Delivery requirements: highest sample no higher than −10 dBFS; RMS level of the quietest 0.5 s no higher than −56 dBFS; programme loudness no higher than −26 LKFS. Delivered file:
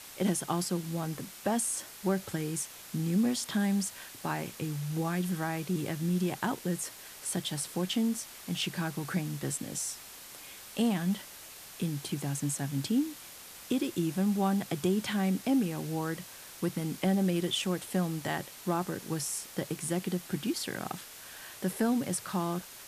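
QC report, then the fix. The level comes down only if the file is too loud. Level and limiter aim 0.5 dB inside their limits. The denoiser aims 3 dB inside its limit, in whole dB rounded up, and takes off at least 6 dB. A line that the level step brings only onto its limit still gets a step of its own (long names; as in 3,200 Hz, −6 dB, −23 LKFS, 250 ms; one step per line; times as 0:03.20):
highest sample −15.5 dBFS: in spec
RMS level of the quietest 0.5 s −48 dBFS: out of spec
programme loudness −32.5 LKFS: in spec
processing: broadband denoise 11 dB, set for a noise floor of −48 dBFS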